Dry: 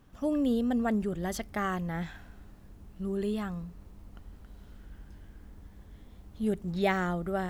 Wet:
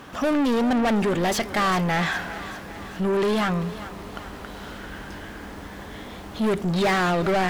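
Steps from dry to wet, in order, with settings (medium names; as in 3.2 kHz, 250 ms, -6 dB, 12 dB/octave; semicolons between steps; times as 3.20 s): overdrive pedal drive 33 dB, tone 3.5 kHz, clips at -14.5 dBFS; on a send: thinning echo 397 ms, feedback 59%, high-pass 420 Hz, level -13 dB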